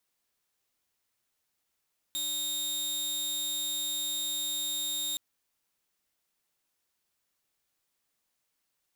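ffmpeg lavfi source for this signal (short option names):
-f lavfi -i "aevalsrc='0.0398*(2*mod(3700*t,1)-1)':d=3.02:s=44100"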